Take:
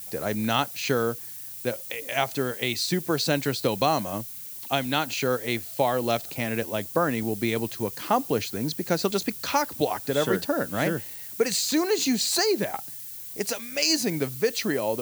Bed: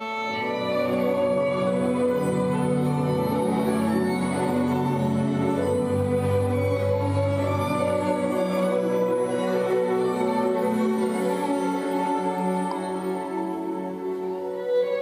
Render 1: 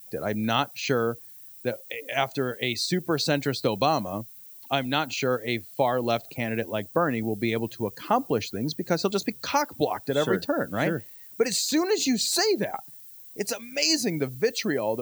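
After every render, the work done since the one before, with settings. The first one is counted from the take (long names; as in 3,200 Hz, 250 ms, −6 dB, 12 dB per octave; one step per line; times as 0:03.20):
broadband denoise 12 dB, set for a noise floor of −39 dBFS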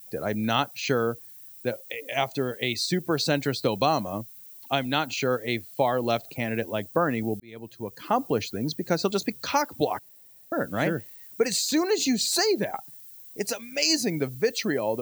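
0:02.07–0:02.54: parametric band 1,500 Hz −6 dB 0.39 octaves
0:07.40–0:08.24: fade in linear
0:09.99–0:10.52: fill with room tone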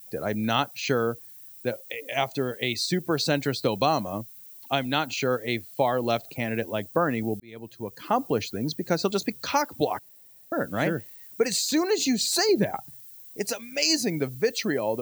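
0:12.49–0:13.01: low-shelf EQ 230 Hz +11 dB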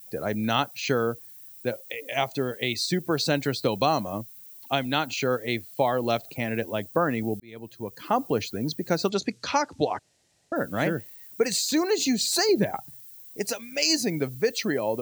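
0:09.09–0:10.56: low-pass filter 7,500 Hz 24 dB per octave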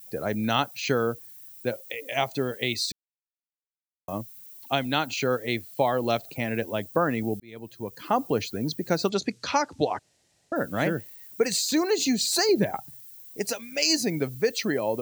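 0:02.92–0:04.08: silence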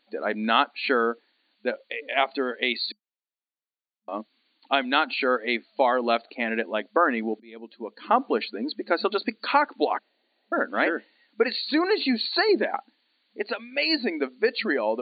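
brick-wall band-pass 210–4,600 Hz
dynamic equaliser 1,500 Hz, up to +7 dB, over −41 dBFS, Q 0.84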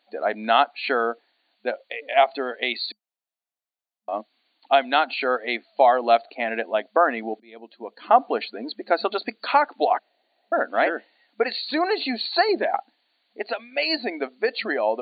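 high-pass filter 340 Hz 6 dB per octave
parametric band 700 Hz +10.5 dB 0.44 octaves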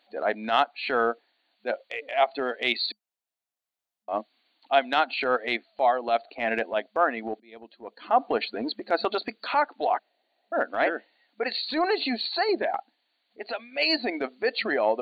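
speech leveller within 5 dB 0.5 s
transient designer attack −8 dB, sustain −3 dB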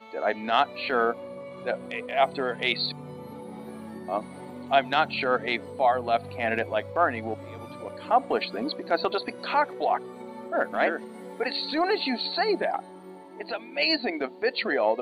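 mix in bed −17 dB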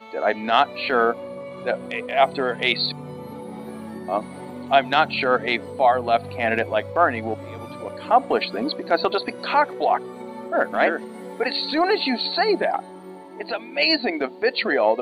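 level +5 dB
brickwall limiter −2 dBFS, peak gain reduction 1.5 dB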